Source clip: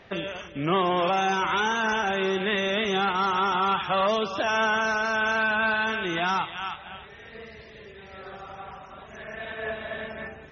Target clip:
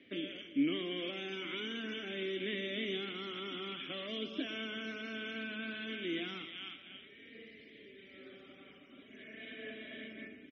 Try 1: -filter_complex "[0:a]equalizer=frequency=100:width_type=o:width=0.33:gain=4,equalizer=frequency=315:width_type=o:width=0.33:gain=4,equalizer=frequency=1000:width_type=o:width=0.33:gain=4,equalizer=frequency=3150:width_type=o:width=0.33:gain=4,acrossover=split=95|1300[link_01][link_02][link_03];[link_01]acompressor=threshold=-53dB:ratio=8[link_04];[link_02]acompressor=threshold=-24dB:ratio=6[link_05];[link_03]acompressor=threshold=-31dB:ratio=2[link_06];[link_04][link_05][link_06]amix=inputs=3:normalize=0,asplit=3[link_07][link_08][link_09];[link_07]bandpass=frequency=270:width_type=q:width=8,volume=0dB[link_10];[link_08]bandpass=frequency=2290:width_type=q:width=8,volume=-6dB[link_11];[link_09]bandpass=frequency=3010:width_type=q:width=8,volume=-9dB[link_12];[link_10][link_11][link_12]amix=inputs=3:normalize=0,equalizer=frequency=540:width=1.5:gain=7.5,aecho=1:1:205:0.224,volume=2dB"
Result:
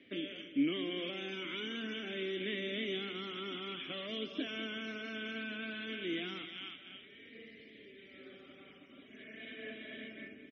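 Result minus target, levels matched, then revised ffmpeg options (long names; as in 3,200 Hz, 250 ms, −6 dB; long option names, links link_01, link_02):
echo 88 ms late
-filter_complex "[0:a]equalizer=frequency=100:width_type=o:width=0.33:gain=4,equalizer=frequency=315:width_type=o:width=0.33:gain=4,equalizer=frequency=1000:width_type=o:width=0.33:gain=4,equalizer=frequency=3150:width_type=o:width=0.33:gain=4,acrossover=split=95|1300[link_01][link_02][link_03];[link_01]acompressor=threshold=-53dB:ratio=8[link_04];[link_02]acompressor=threshold=-24dB:ratio=6[link_05];[link_03]acompressor=threshold=-31dB:ratio=2[link_06];[link_04][link_05][link_06]amix=inputs=3:normalize=0,asplit=3[link_07][link_08][link_09];[link_07]bandpass=frequency=270:width_type=q:width=8,volume=0dB[link_10];[link_08]bandpass=frequency=2290:width_type=q:width=8,volume=-6dB[link_11];[link_09]bandpass=frequency=3010:width_type=q:width=8,volume=-9dB[link_12];[link_10][link_11][link_12]amix=inputs=3:normalize=0,equalizer=frequency=540:width=1.5:gain=7.5,aecho=1:1:117:0.224,volume=2dB"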